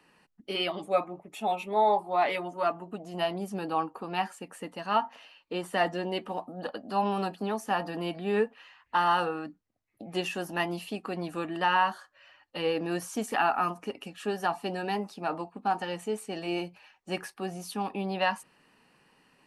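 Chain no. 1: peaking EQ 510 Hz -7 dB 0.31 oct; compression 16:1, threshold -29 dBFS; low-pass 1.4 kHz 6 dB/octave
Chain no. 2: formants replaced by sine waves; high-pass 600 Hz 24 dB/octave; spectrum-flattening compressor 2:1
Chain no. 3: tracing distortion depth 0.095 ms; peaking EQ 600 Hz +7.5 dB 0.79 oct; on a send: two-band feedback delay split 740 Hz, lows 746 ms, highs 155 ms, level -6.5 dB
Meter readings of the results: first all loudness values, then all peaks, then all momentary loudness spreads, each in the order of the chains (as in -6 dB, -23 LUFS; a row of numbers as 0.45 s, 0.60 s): -37.5 LUFS, -31.0 LUFS, -27.0 LUFS; -20.5 dBFS, -12.5 dBFS, -8.0 dBFS; 7 LU, 9 LU, 11 LU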